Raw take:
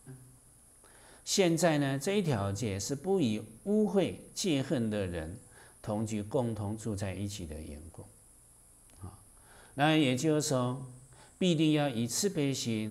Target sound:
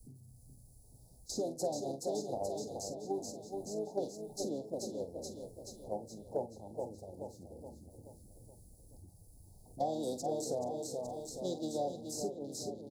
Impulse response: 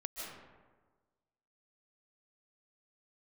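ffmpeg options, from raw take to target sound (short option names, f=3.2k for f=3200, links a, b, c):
-filter_complex "[0:a]aeval=exprs='val(0)+0.5*0.0106*sgn(val(0))':c=same,acrossover=split=550|1300[a][b][c];[a]acompressor=threshold=-43dB:ratio=8[d];[d][b][c]amix=inputs=3:normalize=0,agate=range=-11dB:threshold=-35dB:ratio=16:detection=peak,asplit=2[e][f];[f]aeval=exprs='val(0)*gte(abs(val(0)),0.00237)':c=same,volume=-10dB[g];[e][g]amix=inputs=2:normalize=0,afwtdn=0.00447,aecho=1:1:425|850|1275|1700|2125|2550:0.376|0.188|0.094|0.047|0.0235|0.0117,asplit=2[h][i];[i]asetrate=33038,aresample=44100,atempo=1.33484,volume=-9dB[j];[h][j]amix=inputs=2:normalize=0,asuperstop=centerf=1900:order=12:qfactor=0.54,asplit=2[k][l];[l]adelay=44,volume=-12.5dB[m];[k][m]amix=inputs=2:normalize=0,acrossover=split=200|790[n][o][p];[n]acompressor=threshold=-57dB:ratio=4[q];[o]acompressor=threshold=-37dB:ratio=4[r];[p]acompressor=threshold=-49dB:ratio=4[s];[q][r][s]amix=inputs=3:normalize=0,volume=3dB"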